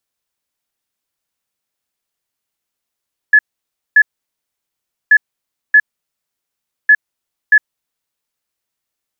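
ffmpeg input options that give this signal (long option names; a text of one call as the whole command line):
ffmpeg -f lavfi -i "aevalsrc='0.668*sin(2*PI*1710*t)*clip(min(mod(mod(t,1.78),0.63),0.06-mod(mod(t,1.78),0.63))/0.005,0,1)*lt(mod(t,1.78),1.26)':duration=5.34:sample_rate=44100" out.wav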